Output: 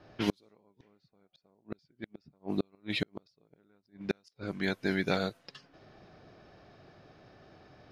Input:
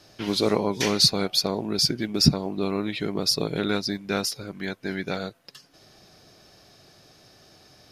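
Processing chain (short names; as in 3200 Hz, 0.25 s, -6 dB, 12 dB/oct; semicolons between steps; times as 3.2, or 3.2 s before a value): flipped gate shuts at -16 dBFS, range -41 dB; low-pass opened by the level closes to 1600 Hz, open at -30 dBFS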